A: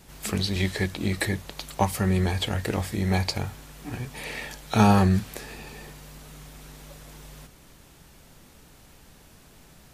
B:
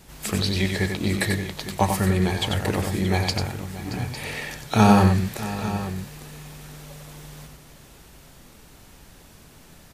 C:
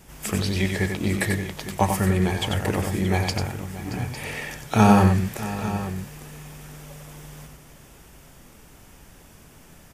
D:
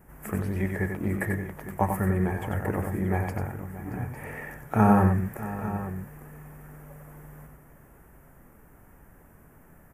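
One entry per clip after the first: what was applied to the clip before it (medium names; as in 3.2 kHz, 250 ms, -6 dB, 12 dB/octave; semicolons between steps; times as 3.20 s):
multi-tap echo 93/626/853 ms -5.5/-15/-13 dB; trim +2 dB
peaking EQ 4.1 kHz -8.5 dB 0.32 oct
FFT filter 1.8 kHz 0 dB, 4 kHz -28 dB, 13 kHz -1 dB; trim -4 dB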